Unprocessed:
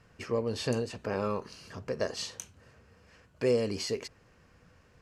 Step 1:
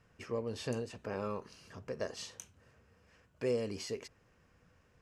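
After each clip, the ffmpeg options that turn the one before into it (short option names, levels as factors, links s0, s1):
-af "equalizer=f=4400:w=7.3:g=-5,volume=0.473"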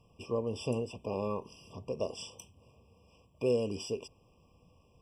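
-af "afftfilt=real='re*eq(mod(floor(b*sr/1024/1200),2),0)':imag='im*eq(mod(floor(b*sr/1024/1200),2),0)':win_size=1024:overlap=0.75,volume=1.58"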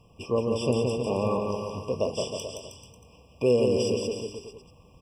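-af "aecho=1:1:170|314.5|437.3|541.7|630.5:0.631|0.398|0.251|0.158|0.1,volume=2.24"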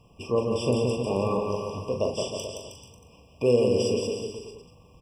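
-filter_complex "[0:a]asplit=2[s0][s1];[s1]adelay=41,volume=0.447[s2];[s0][s2]amix=inputs=2:normalize=0"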